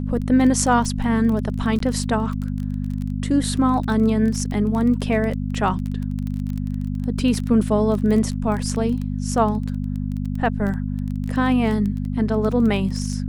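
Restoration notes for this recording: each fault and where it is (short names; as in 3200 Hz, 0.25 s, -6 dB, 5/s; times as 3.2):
crackle 20/s -25 dBFS
hum 50 Hz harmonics 5 -25 dBFS
1.79–1.8 gap 13 ms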